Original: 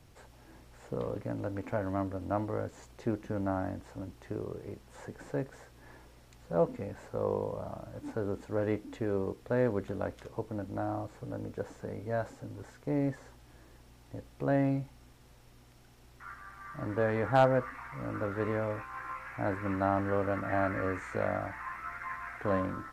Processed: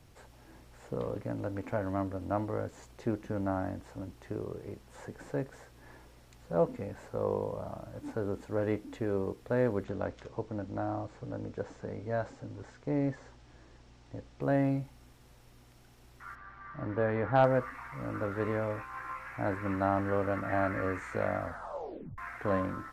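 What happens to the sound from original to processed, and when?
9.84–14.42 LPF 7200 Hz 24 dB/oct
16.35–17.44 air absorption 190 m
21.4 tape stop 0.78 s

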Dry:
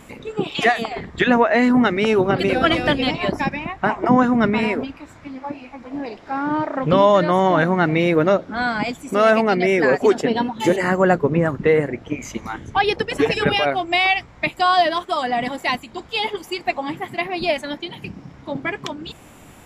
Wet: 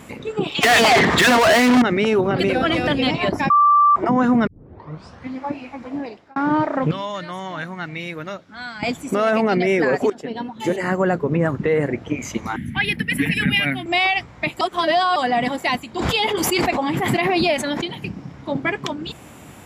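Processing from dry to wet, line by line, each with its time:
0.63–1.82 overdrive pedal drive 37 dB, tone 5900 Hz, clips at -3 dBFS
3.5–3.96 bleep 1170 Hz -11.5 dBFS
4.47 tape start 0.88 s
5.85–6.36 fade out
6.91–8.83 passive tone stack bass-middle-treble 5-5-5
10.1–11.86 fade in, from -17 dB
12.56–13.86 EQ curve 110 Hz 0 dB, 150 Hz +6 dB, 240 Hz +9 dB, 420 Hz -17 dB, 1200 Hz -14 dB, 1900 Hz +7 dB, 6600 Hz -14 dB, 11000 Hz +13 dB
14.61–15.16 reverse
15.99–17.98 backwards sustainer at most 25 dB/s
whole clip: HPF 80 Hz; low shelf 160 Hz +4 dB; limiter -12.5 dBFS; gain +2.5 dB

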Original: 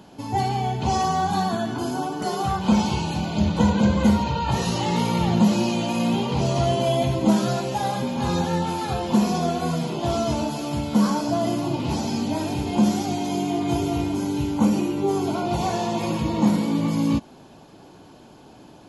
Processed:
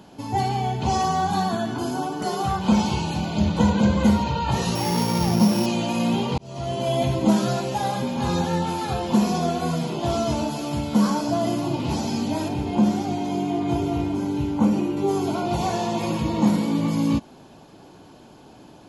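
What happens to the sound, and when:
4.75–5.66 sample sorter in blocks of 8 samples
6.38–7.03 fade in
12.48–14.97 high shelf 3600 Hz -9.5 dB

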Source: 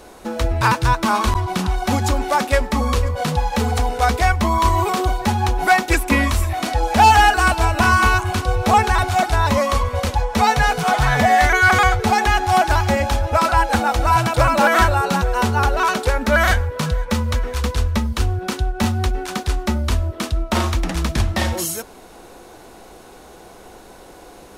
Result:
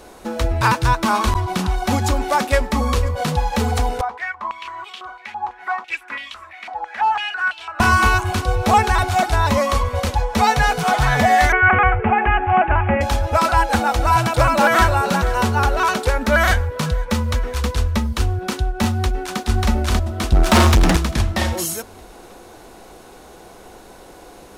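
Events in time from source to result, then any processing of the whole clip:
4.01–7.8 stepped band-pass 6 Hz 910–3100 Hz
11.52–13.01 steep low-pass 2800 Hz 72 dB/oct
14.22–15.04 echo throw 0.48 s, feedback 30%, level -14.5 dB
18.88–19.4 echo throw 0.59 s, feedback 45%, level 0 dB
20.32–20.97 sample leveller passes 3

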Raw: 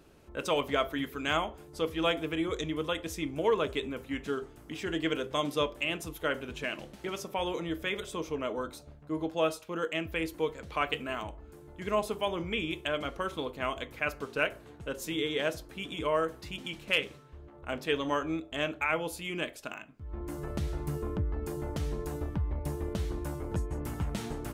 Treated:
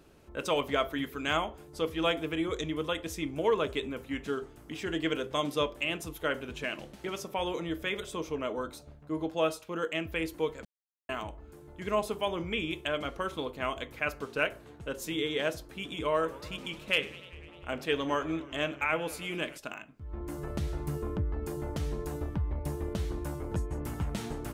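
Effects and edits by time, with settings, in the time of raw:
10.65–11.09 mute
15.94–19.58 warbling echo 99 ms, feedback 77%, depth 196 cents, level -19.5 dB

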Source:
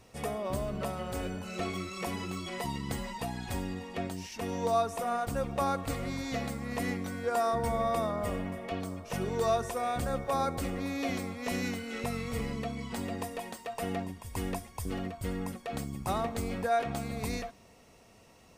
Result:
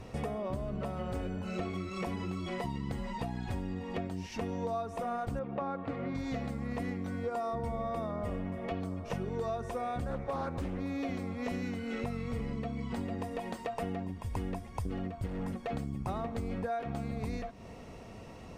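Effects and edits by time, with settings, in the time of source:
5.39–6.15 BPF 170–2500 Hz
7.17–7.85 notch 1600 Hz, Q 6
10.1–10.78 Doppler distortion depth 0.4 ms
15.26–15.71 hard clip -35.5 dBFS
whole clip: LPF 2600 Hz 6 dB/oct; low shelf 370 Hz +5.5 dB; compressor 5:1, threshold -43 dBFS; gain +8.5 dB

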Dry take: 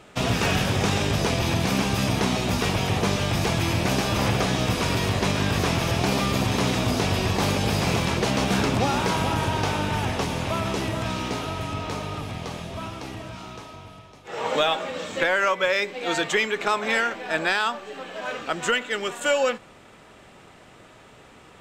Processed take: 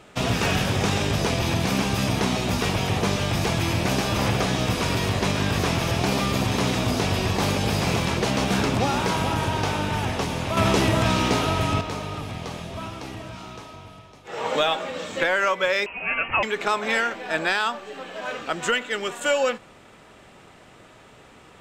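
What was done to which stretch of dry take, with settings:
10.57–11.81 gain +7 dB
15.86–16.43 inverted band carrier 3000 Hz

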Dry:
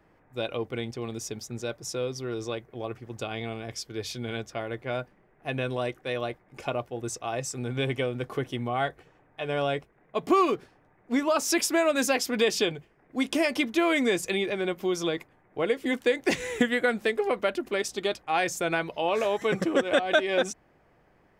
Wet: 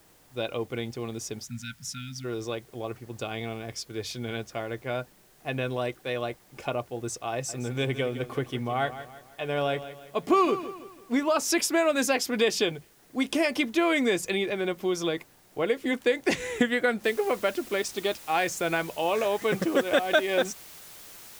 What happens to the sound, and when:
1.45–2.25 spectral delete 270–1300 Hz
7.32–11.21 feedback echo 0.165 s, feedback 41%, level -13 dB
17.04 noise floor step -61 dB -47 dB

